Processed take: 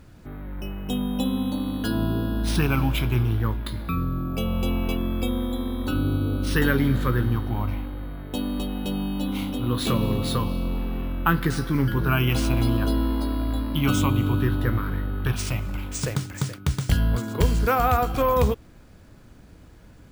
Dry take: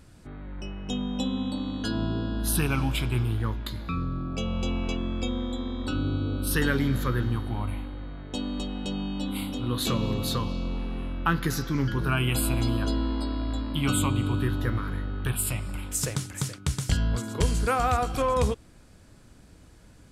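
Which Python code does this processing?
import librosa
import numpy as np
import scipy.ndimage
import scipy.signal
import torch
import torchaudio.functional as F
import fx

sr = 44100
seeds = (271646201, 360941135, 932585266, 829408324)

y = fx.high_shelf(x, sr, hz=6100.0, db=-11.5)
y = np.repeat(y[::3], 3)[:len(y)]
y = y * librosa.db_to_amplitude(4.0)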